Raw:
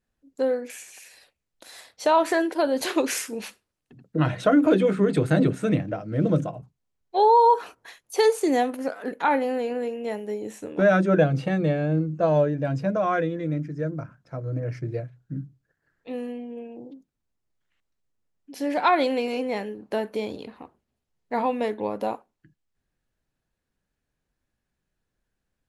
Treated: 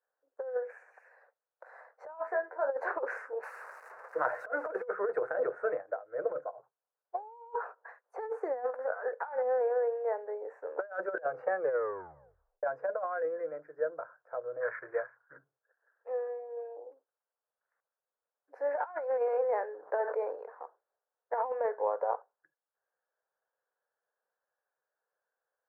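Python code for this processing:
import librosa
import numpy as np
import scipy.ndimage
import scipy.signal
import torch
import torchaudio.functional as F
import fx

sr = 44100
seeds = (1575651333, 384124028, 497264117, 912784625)

y = fx.comb_fb(x, sr, f0_hz=92.0, decay_s=0.16, harmonics='all', damping=0.0, mix_pct=100, at=(2.19, 2.65), fade=0.02)
y = fx.crossing_spikes(y, sr, level_db=-17.5, at=(3.43, 4.86))
y = fx.upward_expand(y, sr, threshold_db=-36.0, expansion=1.5, at=(5.73, 6.58))
y = fx.band_shelf(y, sr, hz=1500.0, db=14.0, octaves=1.7, at=(14.6, 15.37), fade=0.02)
y = fx.sustainer(y, sr, db_per_s=54.0, at=(18.63, 20.36))
y = fx.edit(y, sr, fx.tape_stop(start_s=11.59, length_s=1.04), tone=tone)
y = scipy.signal.sosfilt(scipy.signal.ellip(3, 1.0, 40, [480.0, 1600.0], 'bandpass', fs=sr, output='sos'), y)
y = fx.over_compress(y, sr, threshold_db=-28.0, ratio=-0.5)
y = y * 10.0 ** (-3.0 / 20.0)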